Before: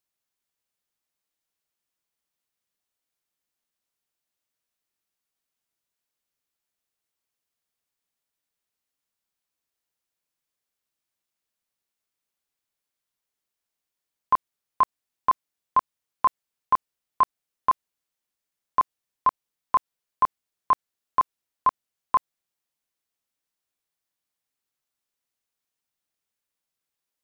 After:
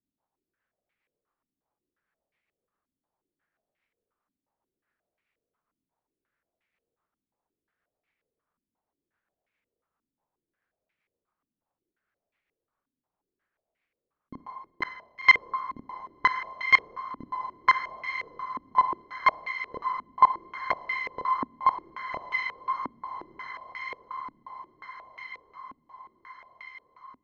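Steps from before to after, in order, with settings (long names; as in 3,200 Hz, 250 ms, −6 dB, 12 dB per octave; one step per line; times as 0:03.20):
phase distortion by the signal itself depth 0.55 ms
in parallel at +1 dB: output level in coarse steps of 14 dB
on the sum: soft clipping −18.5 dBFS, distortion −15 dB
rotating-speaker cabinet horn 7.5 Hz
on a send: feedback delay with all-pass diffusion 1,168 ms, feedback 58%, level −7.5 dB
on the sum: four-comb reverb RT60 1.3 s, DRR 11.5 dB
low-pass on a step sequencer 5.6 Hz 260–2,200 Hz
level +4 dB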